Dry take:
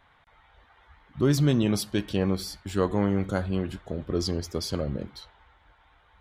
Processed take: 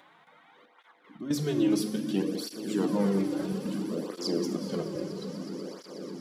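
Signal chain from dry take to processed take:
high-shelf EQ 3,900 Hz +11 dB
in parallel at +0.5 dB: brickwall limiter −19.5 dBFS, peak gain reduction 9 dB
on the sum: Butterworth high-pass 190 Hz 36 dB per octave
gate pattern "xxxxx.x.x." 115 BPM −12 dB
upward compression, threshold −41 dBFS
spectral tilt −2.5 dB per octave
echo that builds up and dies away 122 ms, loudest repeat 8, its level −18 dB
convolution reverb RT60 1.7 s, pre-delay 3 ms, DRR 5.5 dB
through-zero flanger with one copy inverted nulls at 0.6 Hz, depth 4.6 ms
level −7 dB

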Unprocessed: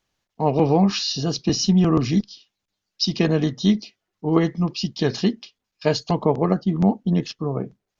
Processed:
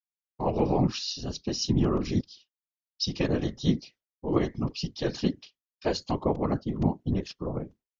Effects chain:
downward expander −42 dBFS
random phases in short frames
0:00.87–0:02.05: multiband upward and downward expander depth 70%
level −7.5 dB

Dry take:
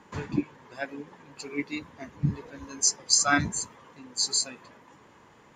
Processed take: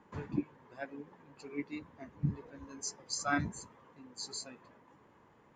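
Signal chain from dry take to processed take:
high-shelf EQ 2,500 Hz −12 dB
level −6.5 dB

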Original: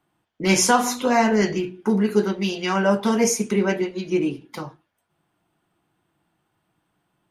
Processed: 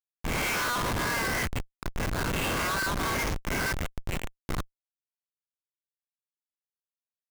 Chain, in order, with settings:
peak hold with a rise ahead of every peak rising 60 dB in 0.86 s
Butterworth high-pass 1,100 Hz 48 dB per octave
comb filter 1.9 ms, depth 58%
in parallel at +1 dB: downward compressor 6 to 1, threshold −29 dBFS, peak gain reduction 15.5 dB
on the sum: high-frequency loss of the air 220 metres
comparator with hysteresis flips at −25 dBFS

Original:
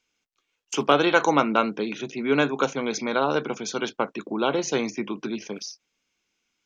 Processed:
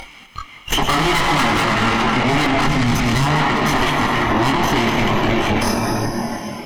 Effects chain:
lower of the sound and its delayed copy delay 0.98 ms
high shelf with overshoot 3,700 Hz −10 dB, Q 1.5
upward compression, threshold −25 dBFS
feedback echo with a high-pass in the loop 100 ms, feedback 80%, high-pass 200 Hz, level −11 dB
on a send at −5.5 dB: convolution reverb RT60 4.3 s, pre-delay 123 ms
on the sum: tube saturation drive 29 dB, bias 0.6
noise reduction from a noise print of the clip's start 12 dB
multi-voice chorus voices 4, 0.52 Hz, delay 23 ms, depth 3.6 ms
0:02.67–0:03.26: bass and treble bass +11 dB, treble +7 dB
boost into a limiter +33.5 dB
level −8 dB

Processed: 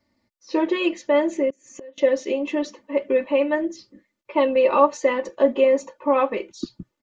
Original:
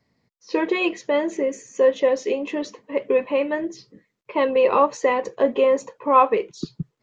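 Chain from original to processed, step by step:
comb filter 3.4 ms, depth 93%
0:01.50–0:01.98: gate with flip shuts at −21 dBFS, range −25 dB
level −3 dB

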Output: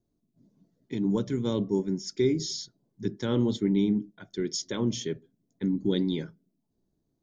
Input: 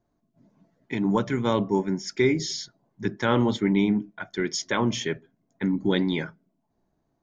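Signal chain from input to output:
flat-topped bell 1,300 Hz −12 dB 2.4 octaves
level −2.5 dB

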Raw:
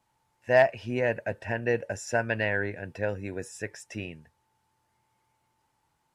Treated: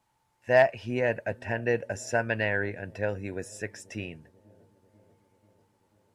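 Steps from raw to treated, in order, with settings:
delay with a low-pass on its return 490 ms, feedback 66%, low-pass 500 Hz, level −23 dB

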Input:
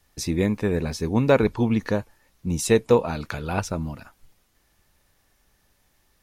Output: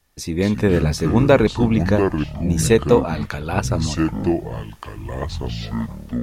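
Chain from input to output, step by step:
automatic gain control gain up to 12 dB
delay with pitch and tempo change per echo 156 ms, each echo −6 semitones, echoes 3, each echo −6 dB
level −1.5 dB

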